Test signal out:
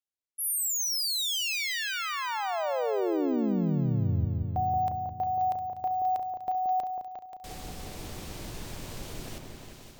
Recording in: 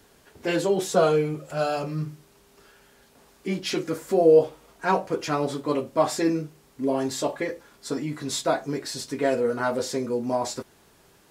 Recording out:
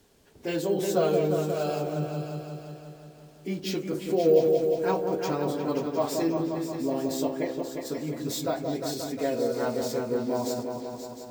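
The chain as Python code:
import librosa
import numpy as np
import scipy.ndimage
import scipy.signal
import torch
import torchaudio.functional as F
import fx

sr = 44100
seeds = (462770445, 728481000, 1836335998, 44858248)

y = fx.peak_eq(x, sr, hz=1400.0, db=-6.5, octaves=1.7)
y = fx.echo_opening(y, sr, ms=177, hz=750, octaves=2, feedback_pct=70, wet_db=-3)
y = np.repeat(scipy.signal.resample_poly(y, 1, 2), 2)[:len(y)]
y = y * 10.0 ** (-3.5 / 20.0)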